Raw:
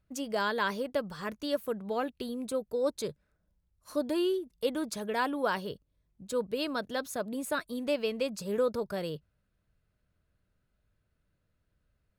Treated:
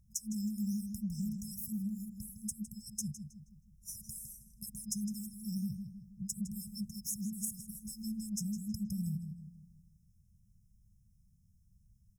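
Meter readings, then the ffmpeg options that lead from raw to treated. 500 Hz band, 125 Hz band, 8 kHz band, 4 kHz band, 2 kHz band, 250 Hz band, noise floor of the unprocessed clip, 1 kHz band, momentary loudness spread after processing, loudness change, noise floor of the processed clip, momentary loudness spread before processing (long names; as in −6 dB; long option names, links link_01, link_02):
below −40 dB, +6.5 dB, +5.5 dB, −11.5 dB, below −40 dB, −2.0 dB, −78 dBFS, below −40 dB, 10 LU, −7.0 dB, −68 dBFS, 7 LU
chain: -filter_complex "[0:a]afftfilt=real='re*(1-between(b*sr/4096,220,5100))':imag='im*(1-between(b*sr/4096,220,5100))':win_size=4096:overlap=0.75,acompressor=threshold=-43dB:ratio=10,asplit=2[link_01][link_02];[link_02]adelay=159,lowpass=frequency=3800:poles=1,volume=-7dB,asplit=2[link_03][link_04];[link_04]adelay=159,lowpass=frequency=3800:poles=1,volume=0.47,asplit=2[link_05][link_06];[link_06]adelay=159,lowpass=frequency=3800:poles=1,volume=0.47,asplit=2[link_07][link_08];[link_08]adelay=159,lowpass=frequency=3800:poles=1,volume=0.47,asplit=2[link_09][link_10];[link_10]adelay=159,lowpass=frequency=3800:poles=1,volume=0.47,asplit=2[link_11][link_12];[link_12]adelay=159,lowpass=frequency=3800:poles=1,volume=0.47[link_13];[link_01][link_03][link_05][link_07][link_09][link_11][link_13]amix=inputs=7:normalize=0,volume=9dB"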